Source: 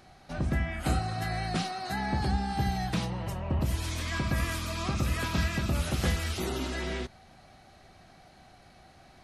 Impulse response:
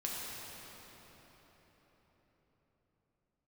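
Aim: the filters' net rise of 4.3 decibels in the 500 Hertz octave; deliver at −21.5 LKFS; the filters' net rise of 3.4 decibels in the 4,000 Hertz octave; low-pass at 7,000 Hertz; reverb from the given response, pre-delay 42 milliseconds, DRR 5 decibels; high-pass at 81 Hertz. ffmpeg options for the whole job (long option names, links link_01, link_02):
-filter_complex "[0:a]highpass=81,lowpass=7000,equalizer=frequency=500:width_type=o:gain=6,equalizer=frequency=4000:width_type=o:gain=4.5,asplit=2[link_01][link_02];[1:a]atrim=start_sample=2205,adelay=42[link_03];[link_02][link_03]afir=irnorm=-1:irlink=0,volume=-8dB[link_04];[link_01][link_04]amix=inputs=2:normalize=0,volume=8dB"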